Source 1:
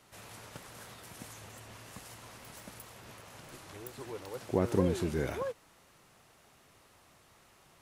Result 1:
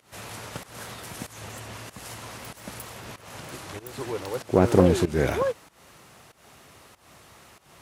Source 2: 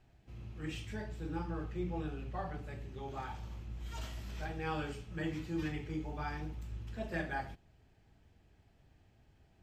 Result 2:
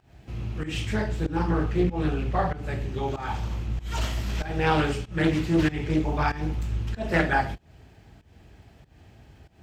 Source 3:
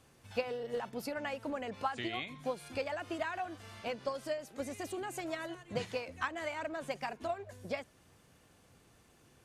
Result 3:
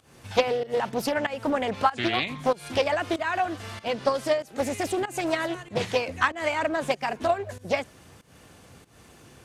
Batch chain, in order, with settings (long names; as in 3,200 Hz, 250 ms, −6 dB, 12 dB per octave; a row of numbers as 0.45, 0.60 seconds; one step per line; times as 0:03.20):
high-pass filter 41 Hz 24 dB per octave
fake sidechain pumping 95 BPM, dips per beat 1, −17 dB, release 236 ms
highs frequency-modulated by the lows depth 0.33 ms
loudness normalisation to −27 LKFS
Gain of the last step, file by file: +11.0, +15.5, +13.0 decibels